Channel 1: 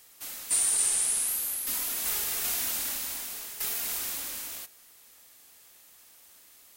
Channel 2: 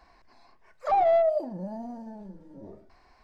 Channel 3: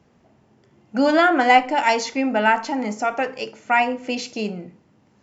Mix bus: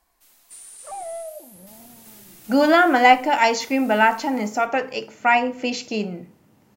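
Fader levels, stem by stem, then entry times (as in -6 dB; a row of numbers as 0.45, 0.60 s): -17.0, -11.5, +1.0 dB; 0.00, 0.00, 1.55 s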